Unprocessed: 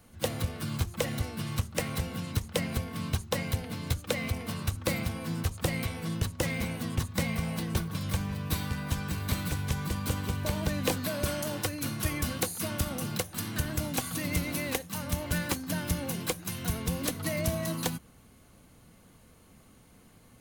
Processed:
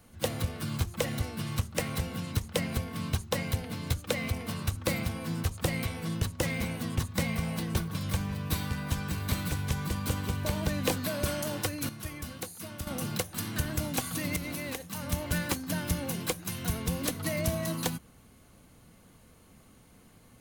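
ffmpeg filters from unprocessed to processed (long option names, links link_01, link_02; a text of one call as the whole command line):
ffmpeg -i in.wav -filter_complex "[0:a]asettb=1/sr,asplit=3[link_01][link_02][link_03];[link_01]atrim=end=14.364[link_04];[link_02]atrim=start=14.36:end=15.08,asetpts=PTS-STARTPTS,afade=type=in:duration=0.004:curve=qsin,afade=type=out:start_time=0.716:duration=0.004:curve=qsin,acompressor=threshold=-32dB:ratio=4:attack=3.2:release=140:knee=1:detection=peak[link_05];[link_03]atrim=start=15.076[link_06];[link_04][link_05]acrossfade=duration=0.004:curve1=hsin:curve2=qsin[link_07];[link_07][link_06]acrossfade=duration=0.004:curve1=qsin:curve2=hsin,asplit=3[link_08][link_09][link_10];[link_08]atrim=end=11.892[link_11];[link_09]atrim=start=11.888:end=12.872,asetpts=PTS-STARTPTS,volume=-8.5dB[link_12];[link_10]atrim=start=12.868[link_13];[link_11][link_12]acrossfade=duration=0.004:curve1=hsin:curve2=hsin[link_14];[link_14][link_13]acrossfade=duration=0.004:curve1=hsin:curve2=hsin" out.wav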